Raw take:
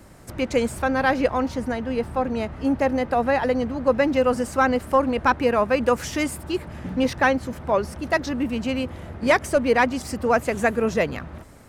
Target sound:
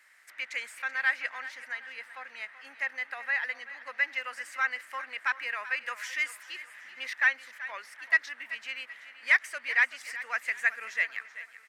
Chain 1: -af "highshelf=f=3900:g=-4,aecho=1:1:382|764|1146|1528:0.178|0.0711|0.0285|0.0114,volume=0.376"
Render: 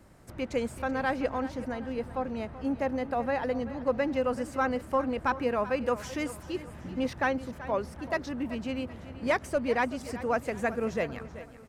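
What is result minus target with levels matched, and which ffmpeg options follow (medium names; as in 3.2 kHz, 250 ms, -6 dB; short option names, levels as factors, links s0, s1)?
2 kHz band -8.5 dB
-af "highpass=f=1900:t=q:w=4.3,highshelf=f=3900:g=-4,aecho=1:1:382|764|1146|1528:0.178|0.0711|0.0285|0.0114,volume=0.376"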